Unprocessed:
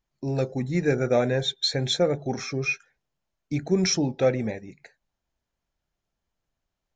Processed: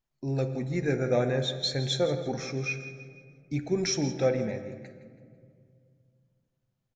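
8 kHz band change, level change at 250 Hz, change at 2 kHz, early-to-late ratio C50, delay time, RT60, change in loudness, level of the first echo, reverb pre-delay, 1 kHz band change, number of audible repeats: -4.5 dB, -4.5 dB, -4.5 dB, 9.5 dB, 164 ms, 2.1 s, -4.0 dB, -14.0 dB, 8 ms, -4.5 dB, 3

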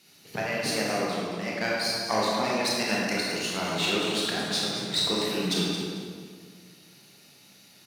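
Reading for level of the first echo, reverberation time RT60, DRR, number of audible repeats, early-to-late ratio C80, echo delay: -8.5 dB, 1.9 s, -5.5 dB, 1, -0.5 dB, 222 ms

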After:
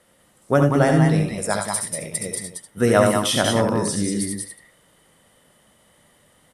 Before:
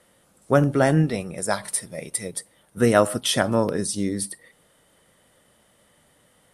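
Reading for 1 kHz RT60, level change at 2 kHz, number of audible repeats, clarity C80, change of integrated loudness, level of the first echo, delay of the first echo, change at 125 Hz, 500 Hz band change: no reverb, +2.5 dB, 3, no reverb, +2.5 dB, -6.0 dB, 69 ms, +4.0 dB, +2.0 dB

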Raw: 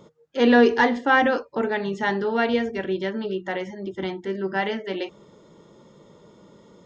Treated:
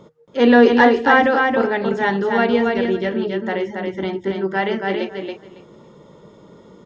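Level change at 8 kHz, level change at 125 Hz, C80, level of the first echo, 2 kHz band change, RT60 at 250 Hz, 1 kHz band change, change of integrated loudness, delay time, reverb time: no reading, +6.0 dB, no reverb, -4.0 dB, +5.0 dB, no reverb, +6.0 dB, +5.5 dB, 277 ms, no reverb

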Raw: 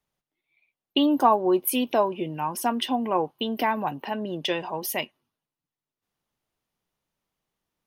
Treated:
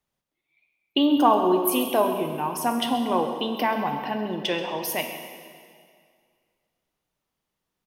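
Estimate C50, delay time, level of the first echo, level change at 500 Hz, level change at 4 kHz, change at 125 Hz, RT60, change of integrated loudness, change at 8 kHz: 5.5 dB, 133 ms, -15.0 dB, +1.5 dB, +1.0 dB, +1.0 dB, 2.0 s, +1.5 dB, +1.0 dB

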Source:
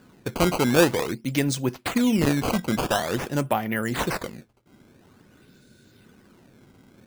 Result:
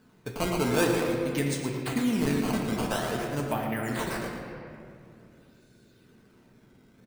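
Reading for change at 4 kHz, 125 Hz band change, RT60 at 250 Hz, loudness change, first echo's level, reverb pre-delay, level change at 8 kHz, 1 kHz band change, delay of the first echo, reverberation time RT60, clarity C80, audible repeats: -6.0 dB, -4.0 dB, 2.9 s, -4.5 dB, -9.0 dB, 4 ms, -5.0 dB, -5.0 dB, 115 ms, 2.5 s, 2.5 dB, 1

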